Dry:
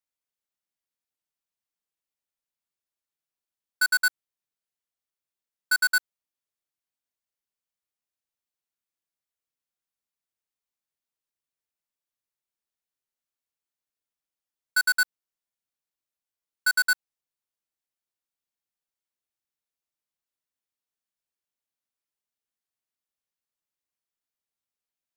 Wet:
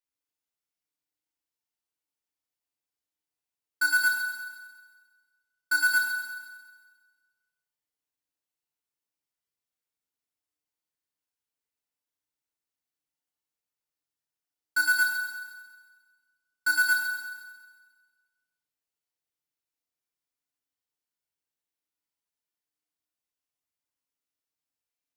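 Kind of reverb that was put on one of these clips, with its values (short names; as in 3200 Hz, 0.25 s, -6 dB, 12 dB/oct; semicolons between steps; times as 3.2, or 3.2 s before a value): FDN reverb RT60 1.5 s, low-frequency decay 1×, high-frequency decay 0.95×, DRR -3 dB; gain -5.5 dB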